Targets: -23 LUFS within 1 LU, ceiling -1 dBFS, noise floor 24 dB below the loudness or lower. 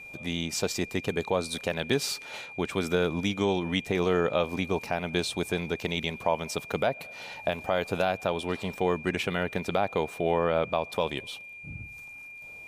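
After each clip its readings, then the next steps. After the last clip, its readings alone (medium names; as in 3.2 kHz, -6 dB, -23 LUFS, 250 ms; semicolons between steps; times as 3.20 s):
steady tone 2.4 kHz; tone level -42 dBFS; loudness -29.0 LUFS; peak level -12.5 dBFS; loudness target -23.0 LUFS
-> band-stop 2.4 kHz, Q 30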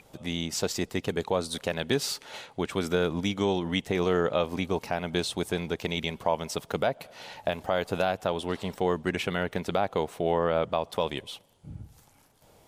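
steady tone not found; loudness -29.5 LUFS; peak level -12.5 dBFS; loudness target -23.0 LUFS
-> trim +6.5 dB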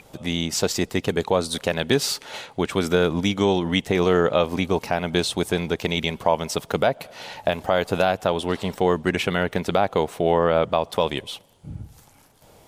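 loudness -23.0 LUFS; peak level -6.0 dBFS; noise floor -53 dBFS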